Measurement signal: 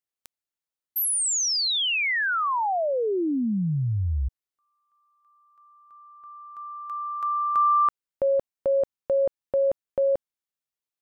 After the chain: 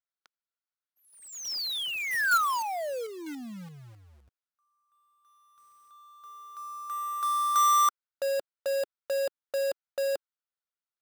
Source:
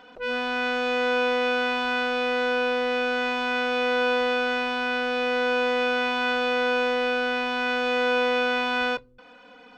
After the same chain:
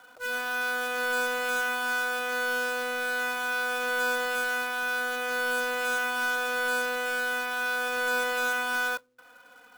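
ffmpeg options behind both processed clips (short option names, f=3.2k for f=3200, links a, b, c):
-af "highpass=350,equalizer=f=390:t=q:w=4:g=-10,equalizer=f=1.4k:t=q:w=4:g=9,equalizer=f=2.7k:t=q:w=4:g=-4,lowpass=f=5.1k:w=0.5412,lowpass=f=5.1k:w=1.3066,acrusher=bits=2:mode=log:mix=0:aa=0.000001,volume=-6dB"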